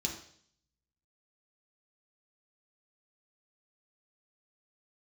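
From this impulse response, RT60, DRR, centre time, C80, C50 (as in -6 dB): 0.60 s, 0.0 dB, 24 ms, 10.5 dB, 7.0 dB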